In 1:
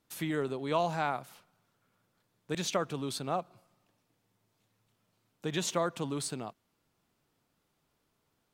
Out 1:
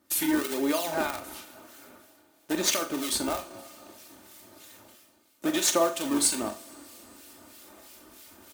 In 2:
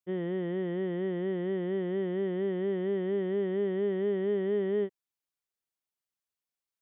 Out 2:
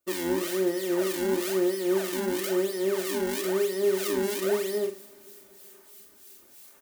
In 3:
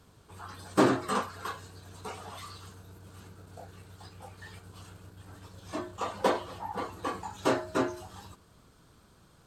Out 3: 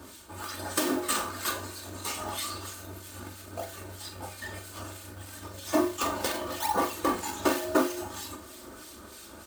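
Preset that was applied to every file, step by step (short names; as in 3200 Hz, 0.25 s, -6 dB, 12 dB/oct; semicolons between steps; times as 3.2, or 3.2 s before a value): in parallel at -3.5 dB: decimation with a swept rate 41×, swing 160% 1 Hz; on the sum: compressor 8:1, threshold -29 dBFS; bell 130 Hz -12.5 dB 1.1 oct; reverse; upward compressor, threshold -46 dBFS; reverse; HPF 93 Hz 12 dB/oct; high shelf 6700 Hz +10.5 dB; notch 970 Hz, Q 23; harmonic tremolo 3.1 Hz, depth 70%, crossover 1700 Hz; comb 3.3 ms, depth 62%; flutter echo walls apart 7.2 m, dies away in 0.25 s; two-slope reverb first 0.4 s, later 4.5 s, from -18 dB, DRR 12 dB; modulation noise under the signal 21 dB; gain +8.5 dB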